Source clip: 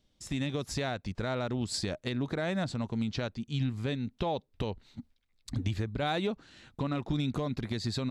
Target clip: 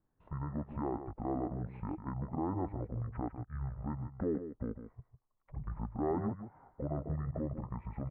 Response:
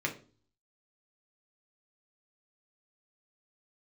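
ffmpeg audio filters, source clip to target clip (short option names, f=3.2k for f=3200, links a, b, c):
-filter_complex "[0:a]lowpass=f=2k:w=0.5412,lowpass=f=2k:w=1.3066,lowshelf=f=310:g=-11.5,asetrate=22696,aresample=44100,atempo=1.94306,asplit=2[a][b];[b]aecho=0:1:151:0.316[c];[a][c]amix=inputs=2:normalize=0,volume=1dB"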